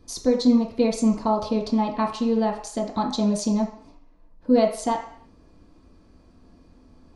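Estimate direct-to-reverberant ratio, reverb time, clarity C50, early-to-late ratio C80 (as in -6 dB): -2.5 dB, 0.55 s, 7.0 dB, 10.5 dB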